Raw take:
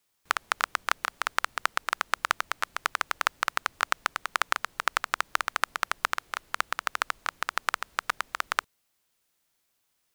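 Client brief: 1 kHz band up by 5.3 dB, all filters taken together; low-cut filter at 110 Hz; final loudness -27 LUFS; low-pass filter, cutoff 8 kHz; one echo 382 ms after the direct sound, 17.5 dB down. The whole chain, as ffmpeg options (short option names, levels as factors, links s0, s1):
-af "highpass=110,lowpass=8000,equalizer=f=1000:t=o:g=7,aecho=1:1:382:0.133,volume=0.944"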